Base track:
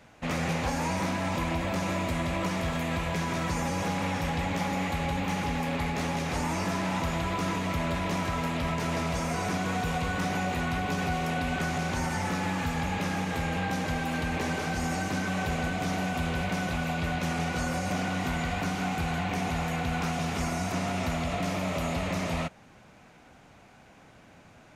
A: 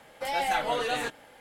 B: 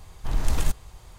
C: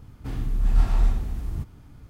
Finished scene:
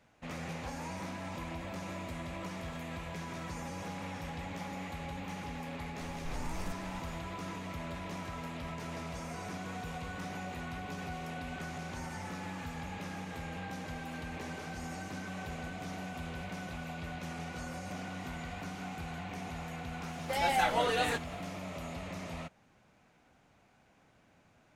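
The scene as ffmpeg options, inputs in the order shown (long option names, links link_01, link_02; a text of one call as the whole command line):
ffmpeg -i bed.wav -i cue0.wav -i cue1.wav -filter_complex "[0:a]volume=-11.5dB[link_01];[2:a]acompressor=threshold=-31dB:ratio=6:attack=3.2:release=140:knee=1:detection=peak,atrim=end=1.18,asetpts=PTS-STARTPTS,volume=-5dB,afade=type=in:duration=0.004:curve=hsin,afade=type=out:start_time=1.176:duration=0.004:curve=hsin,adelay=6010[link_02];[1:a]atrim=end=1.4,asetpts=PTS-STARTPTS,volume=-1.5dB,afade=type=in:duration=0.004:curve=hsin,afade=type=out:start_time=1.396:duration=0.004:curve=hsin,adelay=20080[link_03];[link_01][link_02][link_03]amix=inputs=3:normalize=0" out.wav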